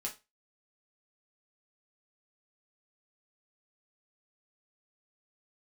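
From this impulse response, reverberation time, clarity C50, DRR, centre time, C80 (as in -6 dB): 0.25 s, 13.0 dB, -1.5 dB, 14 ms, 21.0 dB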